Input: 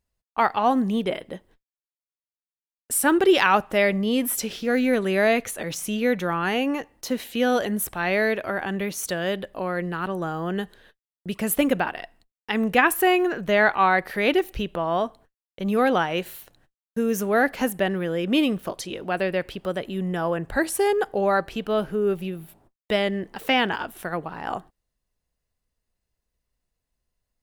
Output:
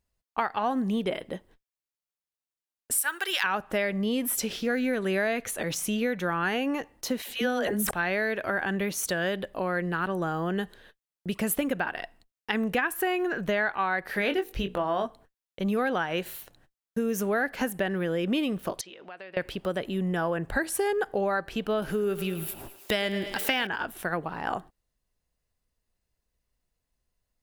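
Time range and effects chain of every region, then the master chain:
2.98–3.44 HPF 1300 Hz + high shelf 8800 Hz +10.5 dB
7.22–7.91 dispersion lows, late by 68 ms, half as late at 560 Hz + sustainer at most 27 dB/s
14.07–15.06 notches 60/120/180/240/300/360/420/480 Hz + doubler 21 ms -8 dB
18.81–19.37 HPF 1100 Hz 6 dB/oct + compressor 3:1, threshold -42 dBFS + air absorption 130 m
21.82–23.67 high shelf 2400 Hz +10 dB + upward compressor, threshold -26 dBFS + thinning echo 0.107 s, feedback 68%, high-pass 310 Hz, level -13.5 dB
whole clip: dynamic EQ 1600 Hz, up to +6 dB, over -40 dBFS, Q 4.5; compressor 6:1, threshold -24 dBFS

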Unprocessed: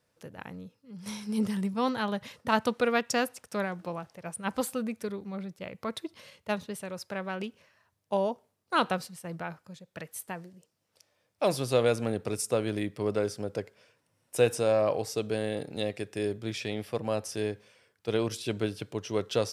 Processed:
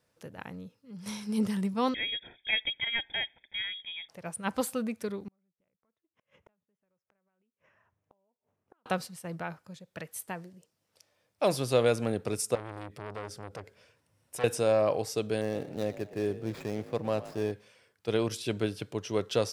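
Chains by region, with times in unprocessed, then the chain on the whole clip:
1.94–4.09 band shelf 580 Hz -15.5 dB 1.1 oct + fixed phaser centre 2300 Hz, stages 6 + inverted band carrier 3500 Hz
5.28–8.86 compressor, threshold -34 dBFS + running mean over 10 samples + flipped gate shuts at -43 dBFS, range -39 dB
12.55–14.44 bell 68 Hz +13 dB 0.93 oct + compressor 1.5:1, threshold -41 dBFS + core saturation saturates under 1800 Hz
15.41–17.52 median filter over 15 samples + frequency-shifting echo 0.118 s, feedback 43%, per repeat +46 Hz, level -16 dB
whole clip: dry

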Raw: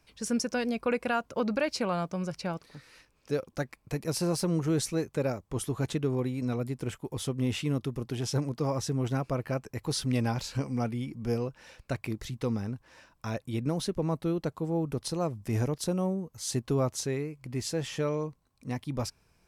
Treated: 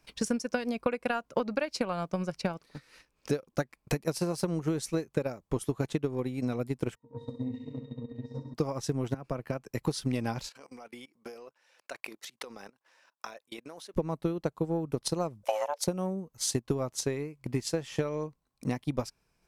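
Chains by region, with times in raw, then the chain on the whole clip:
6.95–8.54 notches 60/120/180 Hz + octave resonator A#, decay 0.21 s + flutter echo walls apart 11.4 m, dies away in 1.4 s
9.14–9.82 compressor 16:1, threshold -31 dBFS + three-band expander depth 70%
10.49–13.94 HPF 560 Hz + level quantiser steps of 16 dB
15.43–15.87 bell 2900 Hz +3 dB 2 oct + frequency shift +430 Hz
whole clip: bell 87 Hz -9.5 dB 0.62 oct; transient shaper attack +11 dB, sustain -6 dB; compressor 5:1, threshold -26 dBFS

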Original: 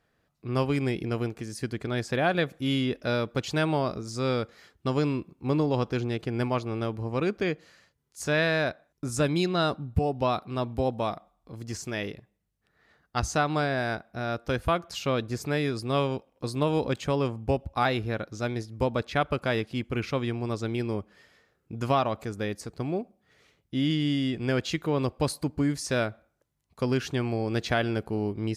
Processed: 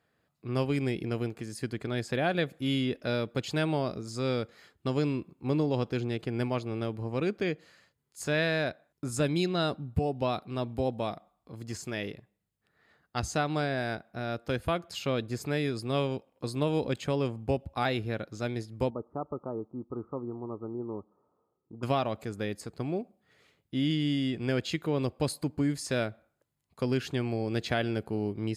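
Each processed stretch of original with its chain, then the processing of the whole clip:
18.9–21.83 rippled Chebyshev low-pass 1300 Hz, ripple 6 dB + low shelf 330 Hz -5 dB
whole clip: HPF 77 Hz; notch 5800 Hz, Q 7.7; dynamic EQ 1100 Hz, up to -5 dB, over -41 dBFS, Q 1.4; gain -2 dB

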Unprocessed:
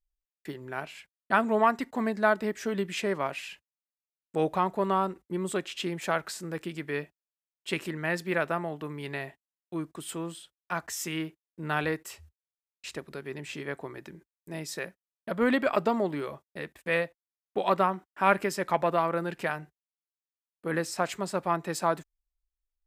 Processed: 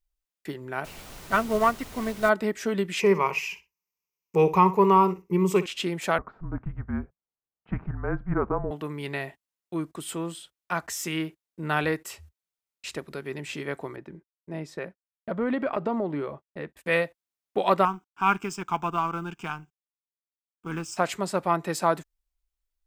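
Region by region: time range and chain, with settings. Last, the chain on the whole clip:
0.84–2.28 notch comb 830 Hz + added noise pink -40 dBFS + upward expander, over -33 dBFS
3–5.66 ripple EQ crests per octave 0.79, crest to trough 15 dB + feedback echo 60 ms, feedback 16%, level -14.5 dB
6.18–8.71 LPF 1400 Hz 24 dB/oct + frequency shift -200 Hz
13.96–16.77 LPF 1200 Hz 6 dB/oct + compressor 3:1, threshold -27 dBFS + expander -50 dBFS
17.85–20.97 G.711 law mismatch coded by A + fixed phaser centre 2800 Hz, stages 8
whole clip: de-esser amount 60%; notch 1700 Hz, Q 23; gain +3.5 dB

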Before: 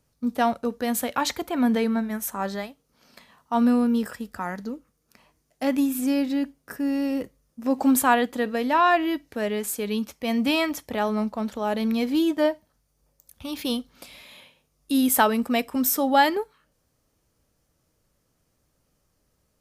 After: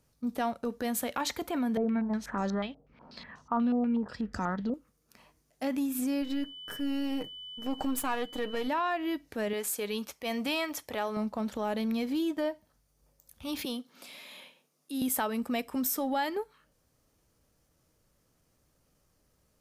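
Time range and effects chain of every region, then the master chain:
1.77–4.74 low shelf 380 Hz +10.5 dB + stepped low-pass 8.2 Hz 690–6100 Hz
6.21–8.67 half-wave gain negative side -7 dB + comb 6.5 ms, depth 40% + whine 3000 Hz -41 dBFS
9.53–11.17 HPF 150 Hz 6 dB/oct + bell 220 Hz -7 dB 1.1 oct
13.65–15.02 HPF 180 Hz 24 dB/oct + compressor 1.5:1, threshold -45 dBFS
whole clip: transient shaper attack -6 dB, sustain -1 dB; compressor 4:1, threshold -29 dBFS

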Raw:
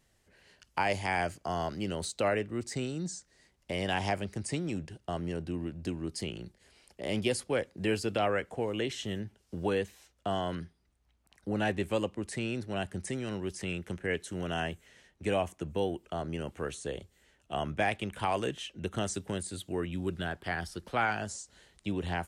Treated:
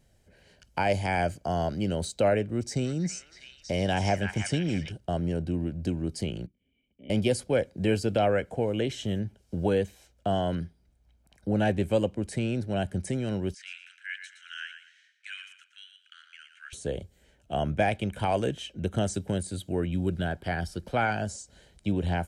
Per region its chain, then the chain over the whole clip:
2.52–4.92 bell 5700 Hz +8.5 dB 0.25 oct + delay with a stepping band-pass 0.323 s, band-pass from 1700 Hz, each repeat 0.7 oct, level -0.5 dB
6.46–7.1 vocal tract filter i + low shelf 420 Hz -5 dB + notch 330 Hz, Q 5.9
13.54–16.73 steep high-pass 1400 Hz 72 dB/oct + air absorption 89 m + feedback echo 0.116 s, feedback 26%, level -9 dB
whole clip: resonant low shelf 680 Hz +6 dB, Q 1.5; comb 1.3 ms, depth 39%

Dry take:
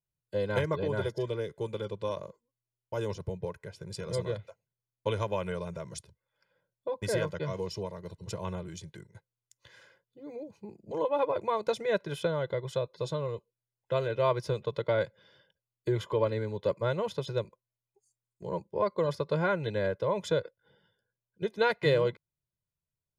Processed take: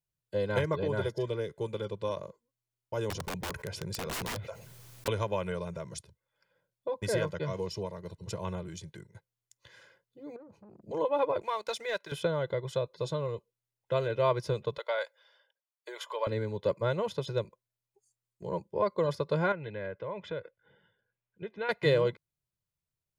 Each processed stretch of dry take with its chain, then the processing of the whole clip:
3.1–5.08 wrapped overs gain 31 dB + fast leveller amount 70%
10.36–10.82 tilt shelf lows +6.5 dB, about 1300 Hz + compressor 16:1, threshold -46 dBFS + core saturation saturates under 730 Hz
11.42–12.12 HPF 1500 Hz 6 dB/oct + sample leveller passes 1
14.78–16.27 HPF 610 Hz 24 dB/oct + high shelf 4100 Hz +4 dB + mismatched tape noise reduction decoder only
19.52–21.69 synth low-pass 2400 Hz, resonance Q 1.6 + compressor 1.5:1, threshold -49 dBFS
whole clip: dry

